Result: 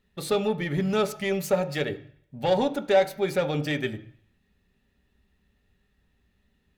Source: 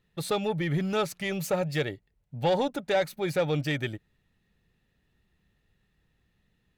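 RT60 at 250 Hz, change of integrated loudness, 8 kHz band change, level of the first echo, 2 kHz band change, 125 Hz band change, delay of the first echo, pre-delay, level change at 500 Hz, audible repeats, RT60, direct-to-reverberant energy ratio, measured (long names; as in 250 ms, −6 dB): 0.55 s, +2.5 dB, +1.0 dB, no echo audible, +1.5 dB, −0.5 dB, no echo audible, 3 ms, +4.0 dB, no echo audible, 0.60 s, 7.0 dB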